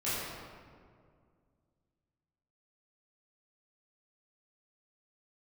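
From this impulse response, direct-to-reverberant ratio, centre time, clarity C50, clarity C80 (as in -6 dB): -12.5 dB, 135 ms, -3.5 dB, -1.0 dB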